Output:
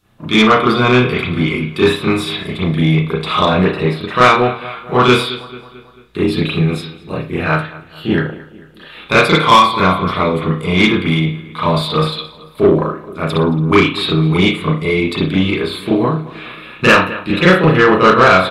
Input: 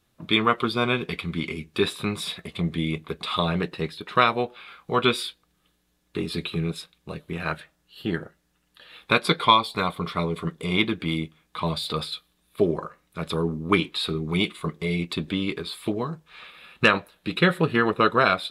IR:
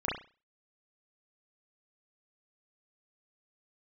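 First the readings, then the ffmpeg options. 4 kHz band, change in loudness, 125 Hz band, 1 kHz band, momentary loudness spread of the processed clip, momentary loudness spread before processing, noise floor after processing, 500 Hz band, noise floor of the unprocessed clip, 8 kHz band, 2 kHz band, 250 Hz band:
+8.5 dB, +11.5 dB, +13.0 dB, +11.5 dB, 13 LU, 13 LU, -40 dBFS, +12.5 dB, -70 dBFS, +9.0 dB, +11.0 dB, +12.5 dB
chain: -filter_complex "[0:a]asplit=2[s0][s1];[s1]adelay=221,lowpass=f=4900:p=1,volume=0.112,asplit=2[s2][s3];[s3]adelay=221,lowpass=f=4900:p=1,volume=0.52,asplit=2[s4][s5];[s5]adelay=221,lowpass=f=4900:p=1,volume=0.52,asplit=2[s6][s7];[s7]adelay=221,lowpass=f=4900:p=1,volume=0.52[s8];[s0][s2][s4][s6][s8]amix=inputs=5:normalize=0[s9];[1:a]atrim=start_sample=2205[s10];[s9][s10]afir=irnorm=-1:irlink=0,acontrast=73,volume=0.891"

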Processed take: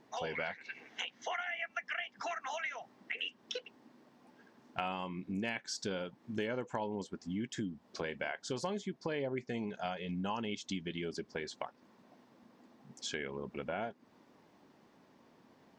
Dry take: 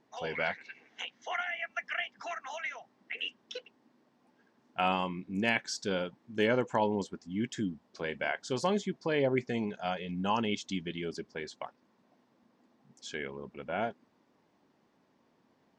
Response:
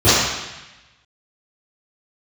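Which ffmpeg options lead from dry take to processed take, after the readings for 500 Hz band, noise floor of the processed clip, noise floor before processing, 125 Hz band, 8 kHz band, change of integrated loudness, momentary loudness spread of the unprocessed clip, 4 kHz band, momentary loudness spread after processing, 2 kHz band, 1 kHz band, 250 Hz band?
-6.5 dB, -67 dBFS, -71 dBFS, -4.5 dB, -1.5 dB, -5.5 dB, 12 LU, -3.5 dB, 6 LU, -5.0 dB, -6.0 dB, -5.5 dB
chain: -af "acompressor=threshold=0.00708:ratio=4,volume=2"

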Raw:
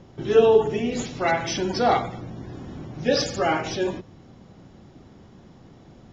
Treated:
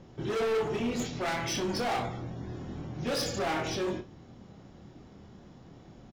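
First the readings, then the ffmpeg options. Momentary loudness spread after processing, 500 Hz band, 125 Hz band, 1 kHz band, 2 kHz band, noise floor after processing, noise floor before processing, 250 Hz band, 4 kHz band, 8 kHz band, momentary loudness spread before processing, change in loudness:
22 LU, -11.0 dB, -4.0 dB, -9.0 dB, -6.5 dB, -53 dBFS, -50 dBFS, -6.0 dB, -5.5 dB, no reading, 19 LU, -9.5 dB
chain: -af "volume=17.8,asoftclip=hard,volume=0.0562,aecho=1:1:25|61:0.473|0.178,volume=0.631"

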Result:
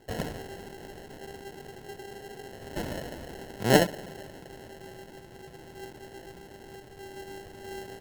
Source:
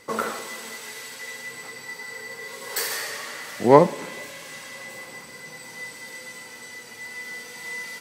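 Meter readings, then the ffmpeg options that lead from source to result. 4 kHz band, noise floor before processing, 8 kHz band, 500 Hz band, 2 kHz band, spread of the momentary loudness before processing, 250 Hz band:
-3.5 dB, -43 dBFS, -8.0 dB, -8.0 dB, -7.0 dB, 16 LU, -4.5 dB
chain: -af "asubboost=boost=9.5:cutoff=97,acrusher=samples=37:mix=1:aa=0.000001,volume=0.501"

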